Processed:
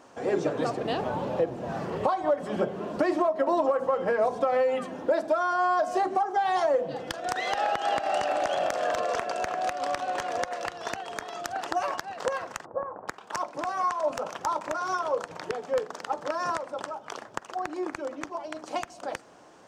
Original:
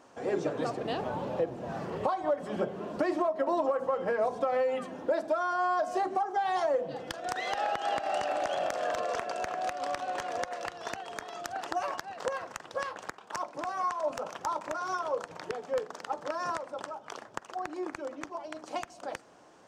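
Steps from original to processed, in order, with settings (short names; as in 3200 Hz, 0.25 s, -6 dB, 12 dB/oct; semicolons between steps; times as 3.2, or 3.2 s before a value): 12.65–13.08 inverse Chebyshev low-pass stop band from 4600 Hz, stop band 70 dB; gain +4 dB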